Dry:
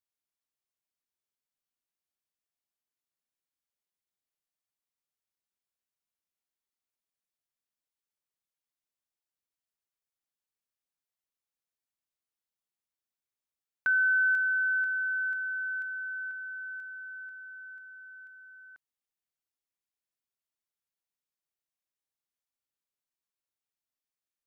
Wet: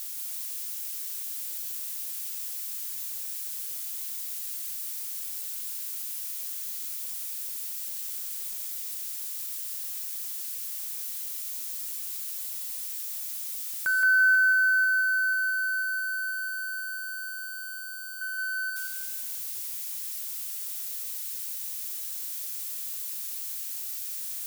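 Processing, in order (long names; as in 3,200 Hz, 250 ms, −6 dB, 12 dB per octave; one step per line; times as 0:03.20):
spike at every zero crossing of −30.5 dBFS
0:18.21–0:18.70: parametric band 1,500 Hz +12 dB 1.4 octaves
feedback echo at a low word length 171 ms, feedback 35%, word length 10 bits, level −3.5 dB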